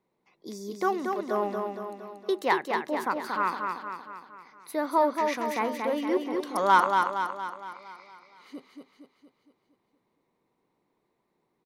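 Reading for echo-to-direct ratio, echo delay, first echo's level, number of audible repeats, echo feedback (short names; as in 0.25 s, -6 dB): -3.0 dB, 0.232 s, -4.5 dB, 6, 53%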